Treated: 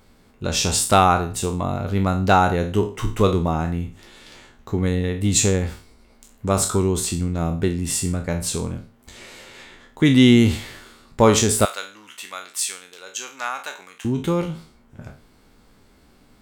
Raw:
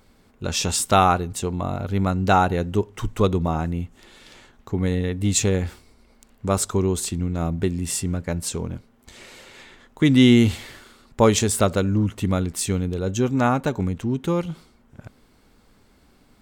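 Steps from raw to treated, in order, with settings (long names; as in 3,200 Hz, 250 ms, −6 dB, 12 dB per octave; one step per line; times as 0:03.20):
peak hold with a decay on every bin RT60 0.37 s
0:11.65–0:14.05: high-pass filter 1,400 Hz 12 dB per octave
level +1 dB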